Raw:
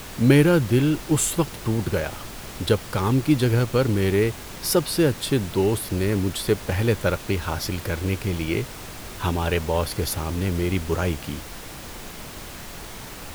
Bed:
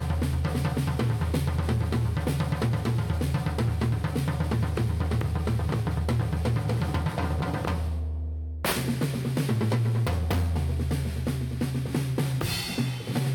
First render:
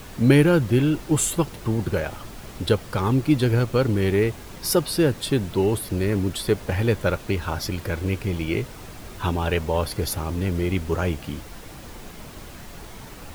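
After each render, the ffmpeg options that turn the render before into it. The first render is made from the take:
-af "afftdn=nr=6:nf=-38"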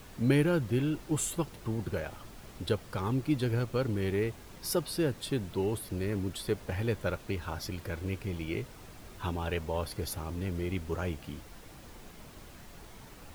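-af "volume=-10dB"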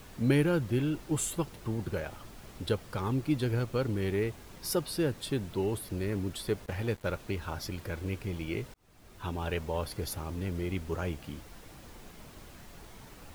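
-filter_complex "[0:a]asettb=1/sr,asplit=3[a][b][c];[a]atrim=end=6.664[d];[b]atrim=start=6.66:end=7.09,asetpts=PTS-STARTPTS,afade=t=in:d=0.004:c=qsin,afade=t=out:st=0.426:d=0.004:c=qsin,aeval=exprs='sgn(val(0))*max(abs(val(0))-0.00501,0)':c=same[e];[c]atrim=start=7.086[f];[d][e]acrossfade=d=0.004:c1=hsin:c2=qsin[g];[g][f]acrossfade=d=0.004:c1=qsin:c2=hsin,asplit=2[h][i];[h]atrim=end=8.74,asetpts=PTS-STARTPTS,afade=t=out:st=8.736:d=0.004:c=hsin[j];[i]atrim=start=8.74,asetpts=PTS-STARTPTS,afade=t=in:d=0.69[k];[j][k]concat=n=2:v=0:a=1"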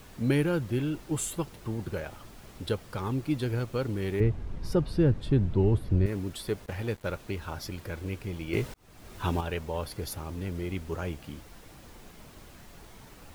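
-filter_complex "[0:a]asettb=1/sr,asplit=3[a][b][c];[a]atrim=end=4.204[d];[b]atrim=start=4.2:end=6.06,asetpts=PTS-STARTPTS,afade=t=in:d=0.004:c=qsin,afade=t=out:st=1.856:d=0.004:c=qsin,aemphasis=mode=reproduction:type=riaa[e];[c]atrim=start=6.056[f];[d][e]acrossfade=d=0.004:c1=hsin:c2=qsin[g];[g][f]acrossfade=d=0.004:c1=qsin:c2=hsin,asettb=1/sr,asplit=3[h][i][j];[h]atrim=end=8.534[k];[i]atrim=start=8.53:end=9.41,asetpts=PTS-STARTPTS,afade=t=in:d=0.004:c=qsin,afade=t=out:st=0.876:d=0.004:c=qsin,acontrast=87[l];[j]atrim=start=9.406[m];[k][l]acrossfade=d=0.004:c1=hsin:c2=qsin[n];[n][m]acrossfade=d=0.004:c1=qsin:c2=hsin"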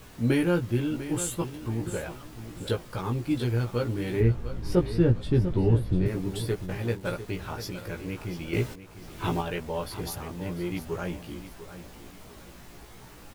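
-filter_complex "[0:a]asplit=2[a][b];[b]adelay=17,volume=-3dB[c];[a][c]amix=inputs=2:normalize=0,aecho=1:1:697|1394|2091|2788:0.237|0.083|0.029|0.0102"

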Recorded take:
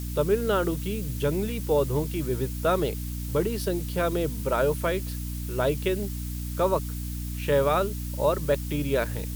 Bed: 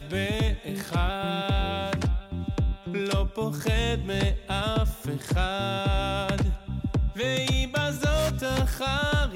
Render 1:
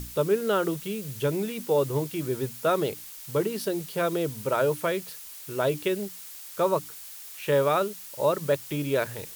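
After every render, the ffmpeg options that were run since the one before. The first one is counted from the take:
-af "bandreject=f=60:t=h:w=6,bandreject=f=120:t=h:w=6,bandreject=f=180:t=h:w=6,bandreject=f=240:t=h:w=6,bandreject=f=300:t=h:w=6"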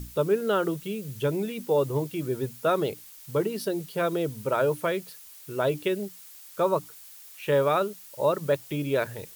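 -af "afftdn=nr=6:nf=-43"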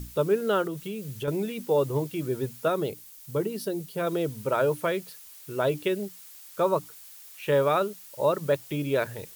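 -filter_complex "[0:a]asettb=1/sr,asplit=3[a][b][c];[a]atrim=end=0.624[d];[b]atrim=start=0.62:end=1.28,asetpts=PTS-STARTPTS,afade=t=in:d=0.004:c=qsin,afade=t=out:st=0.656:d=0.004:c=qsin,acompressor=threshold=-30dB:ratio=2.5:attack=3.2:release=140:knee=1:detection=peak[e];[c]atrim=start=1.276[f];[d][e]acrossfade=d=0.004:c1=hsin:c2=qsin[g];[g][f]acrossfade=d=0.004:c1=qsin:c2=hsin,asettb=1/sr,asplit=3[h][i][j];[h]atrim=end=2.684[k];[i]atrim=start=2.68:end=4.07,asetpts=PTS-STARTPTS,afade=t=in:d=0.004:c=qsin,afade=t=out:st=1.386:d=0.004:c=qsin,equalizer=f=1.7k:w=0.3:g=-4.5[l];[j]atrim=start=4.066[m];[k][l]acrossfade=d=0.004:c1=hsin:c2=qsin[n];[n][m]acrossfade=d=0.004:c1=qsin:c2=hsin"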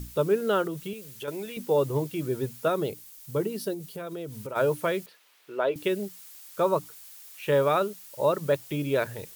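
-filter_complex "[0:a]asettb=1/sr,asplit=3[a][b][c];[a]atrim=end=0.934[d];[b]atrim=start=0.93:end=1.57,asetpts=PTS-STARTPTS,afade=t=in:d=0.004:c=qsin,afade=t=out:st=0.636:d=0.004:c=qsin,highpass=f=620:p=1[e];[c]atrim=start=1.566[f];[d][e]acrossfade=d=0.004:c1=hsin:c2=qsin[g];[g][f]acrossfade=d=0.004:c1=qsin:c2=hsin,asplit=3[h][i][j];[h]afade=t=out:st=3.73:d=0.02[k];[i]acompressor=threshold=-34dB:ratio=4:attack=3.2:release=140:knee=1:detection=peak,afade=t=in:st=3.73:d=0.02,afade=t=out:st=4.55:d=0.02[l];[j]afade=t=in:st=4.55:d=0.02[m];[k][l][m]amix=inputs=3:normalize=0,asettb=1/sr,asplit=3[n][o][p];[n]atrim=end=5.064[q];[o]atrim=start=5.06:end=5.76,asetpts=PTS-STARTPTS,afade=t=in:d=0.004:c=qsin,afade=t=out:st=0.696:d=0.004:c=qsin,acrossover=split=270 3700:gain=0.0631 1 0.126[r][s][t];[r][s][t]amix=inputs=3:normalize=0[u];[p]atrim=start=5.756[v];[q][u]acrossfade=d=0.004:c1=hsin:c2=qsin[w];[w][v]acrossfade=d=0.004:c1=qsin:c2=hsin"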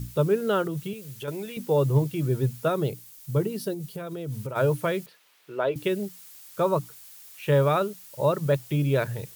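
-af "equalizer=f=130:w=1.9:g=11"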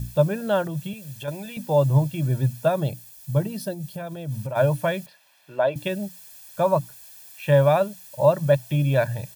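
-af "equalizer=f=590:t=o:w=0.37:g=7.5,aecho=1:1:1.2:0.73"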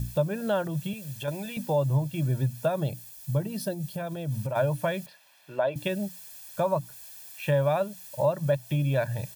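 -af "acompressor=threshold=-26dB:ratio=2"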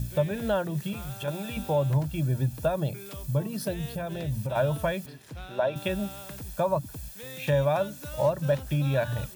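-filter_complex "[1:a]volume=-16dB[a];[0:a][a]amix=inputs=2:normalize=0"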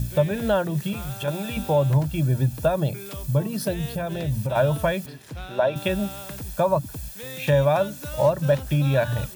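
-af "volume=5dB"

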